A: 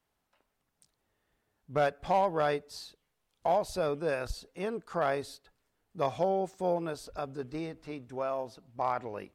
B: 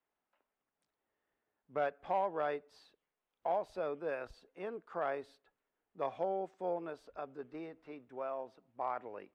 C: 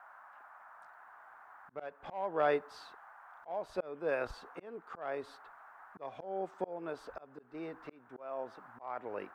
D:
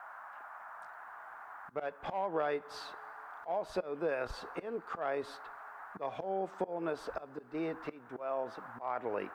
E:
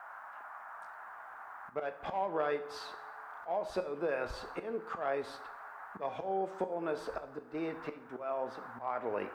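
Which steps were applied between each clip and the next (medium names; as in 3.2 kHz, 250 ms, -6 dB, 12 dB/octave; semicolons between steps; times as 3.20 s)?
three-band isolator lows -14 dB, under 230 Hz, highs -18 dB, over 3.1 kHz; band-stop 4.2 kHz, Q 26; trim -6.5 dB
band noise 690–1600 Hz -64 dBFS; slow attack 463 ms; trim +8.5 dB
two-slope reverb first 0.26 s, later 2.5 s, from -20 dB, DRR 17.5 dB; compression 6:1, threshold -37 dBFS, peak gain reduction 11 dB; trim +6.5 dB
plate-style reverb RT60 0.68 s, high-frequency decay 0.9×, DRR 8 dB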